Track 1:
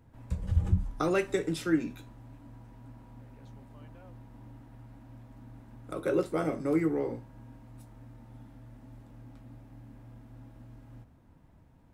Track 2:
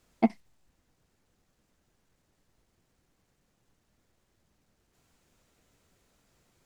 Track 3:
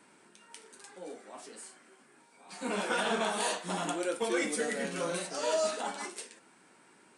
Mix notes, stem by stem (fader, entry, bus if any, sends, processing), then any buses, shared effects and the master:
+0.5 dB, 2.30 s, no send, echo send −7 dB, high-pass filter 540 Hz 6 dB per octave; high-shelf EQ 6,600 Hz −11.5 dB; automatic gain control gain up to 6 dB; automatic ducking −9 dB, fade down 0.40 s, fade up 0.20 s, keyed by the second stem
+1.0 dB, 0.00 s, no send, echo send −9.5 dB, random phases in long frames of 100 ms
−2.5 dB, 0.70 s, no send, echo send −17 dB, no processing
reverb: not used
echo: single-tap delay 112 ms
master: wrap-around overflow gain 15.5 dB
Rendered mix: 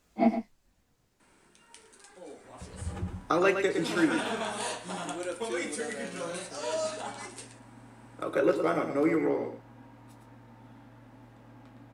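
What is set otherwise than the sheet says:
stem 3: entry 0.70 s → 1.20 s
master: missing wrap-around overflow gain 15.5 dB

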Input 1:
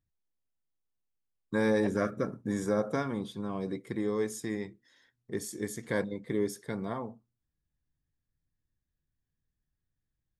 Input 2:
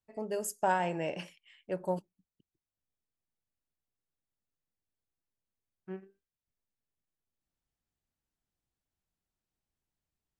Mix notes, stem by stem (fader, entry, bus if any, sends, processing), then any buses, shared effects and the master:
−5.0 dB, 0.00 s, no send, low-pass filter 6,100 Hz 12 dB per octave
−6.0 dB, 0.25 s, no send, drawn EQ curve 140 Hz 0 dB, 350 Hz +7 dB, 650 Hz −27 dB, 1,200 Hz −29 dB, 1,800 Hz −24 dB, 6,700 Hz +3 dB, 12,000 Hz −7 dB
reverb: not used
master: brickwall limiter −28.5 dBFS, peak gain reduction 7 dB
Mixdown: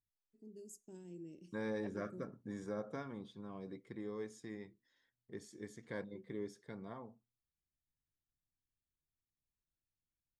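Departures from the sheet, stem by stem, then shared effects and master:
stem 1 −5.0 dB → −13.0 dB
stem 2 −6.0 dB → −16.5 dB

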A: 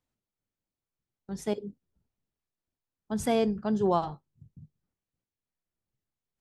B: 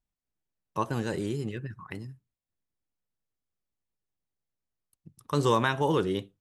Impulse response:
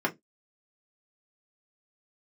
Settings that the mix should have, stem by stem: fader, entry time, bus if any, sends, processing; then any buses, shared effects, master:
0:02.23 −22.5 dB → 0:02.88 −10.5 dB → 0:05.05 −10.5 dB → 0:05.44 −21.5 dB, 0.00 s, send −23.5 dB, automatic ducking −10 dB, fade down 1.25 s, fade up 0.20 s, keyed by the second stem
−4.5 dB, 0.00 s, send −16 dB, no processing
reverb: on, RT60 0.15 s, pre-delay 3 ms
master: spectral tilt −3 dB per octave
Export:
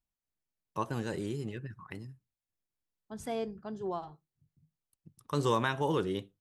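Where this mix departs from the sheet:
stem B: send off
master: missing spectral tilt −3 dB per octave

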